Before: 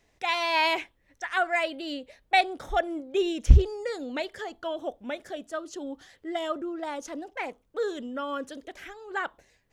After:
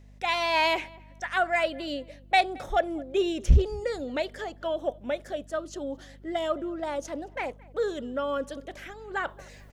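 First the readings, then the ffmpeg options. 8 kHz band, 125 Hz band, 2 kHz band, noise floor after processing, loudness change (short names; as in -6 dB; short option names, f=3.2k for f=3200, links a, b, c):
0.0 dB, -2.5 dB, -0.5 dB, -51 dBFS, 0.0 dB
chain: -filter_complex "[0:a]equalizer=f=570:w=4.4:g=6.5,areverse,acompressor=mode=upward:threshold=-39dB:ratio=2.5,areverse,aeval=exprs='val(0)+0.00316*(sin(2*PI*50*n/s)+sin(2*PI*2*50*n/s)/2+sin(2*PI*3*50*n/s)/3+sin(2*PI*4*50*n/s)/4+sin(2*PI*5*50*n/s)/5)':c=same,asoftclip=type=tanh:threshold=-9dB,asplit=2[a][b];[b]adelay=220,lowpass=f=2.4k:p=1,volume=-23dB,asplit=2[c][d];[d]adelay=220,lowpass=f=2.4k:p=1,volume=0.3[e];[a][c][e]amix=inputs=3:normalize=0"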